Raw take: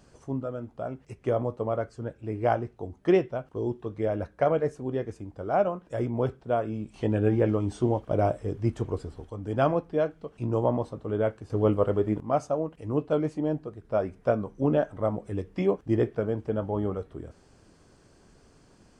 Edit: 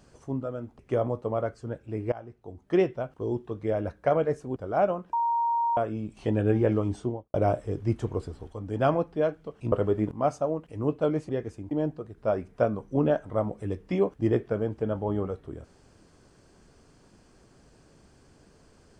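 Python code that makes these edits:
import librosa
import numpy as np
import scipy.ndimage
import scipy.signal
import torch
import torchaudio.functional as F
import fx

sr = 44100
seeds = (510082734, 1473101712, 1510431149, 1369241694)

y = fx.studio_fade_out(x, sr, start_s=7.63, length_s=0.48)
y = fx.edit(y, sr, fx.cut(start_s=0.79, length_s=0.35),
    fx.fade_in_from(start_s=2.47, length_s=0.8, floor_db=-22.0),
    fx.move(start_s=4.91, length_s=0.42, to_s=13.38),
    fx.bleep(start_s=5.9, length_s=0.64, hz=934.0, db=-22.5),
    fx.cut(start_s=10.49, length_s=1.32), tone=tone)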